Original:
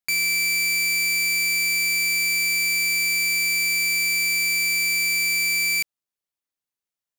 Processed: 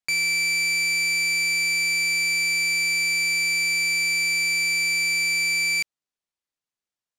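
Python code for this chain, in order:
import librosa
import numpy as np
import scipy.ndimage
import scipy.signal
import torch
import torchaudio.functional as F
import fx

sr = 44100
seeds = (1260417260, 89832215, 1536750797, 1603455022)

y = scipy.signal.sosfilt(scipy.signal.butter(2, 8200.0, 'lowpass', fs=sr, output='sos'), x)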